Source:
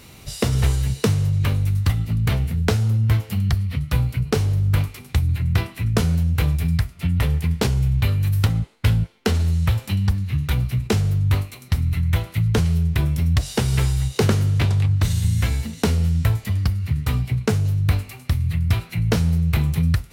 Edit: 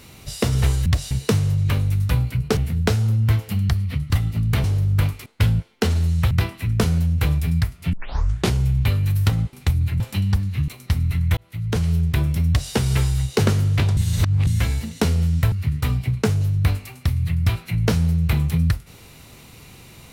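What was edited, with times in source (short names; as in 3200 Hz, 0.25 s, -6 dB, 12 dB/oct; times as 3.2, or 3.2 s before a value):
1.84–2.38 swap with 3.91–4.39
5.01–5.48 swap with 8.7–9.75
7.1 tape start 0.60 s
10.43–11.5 cut
12.19–12.74 fade in
13.3–13.55 copy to 0.86
14.79–15.29 reverse
16.34–16.76 cut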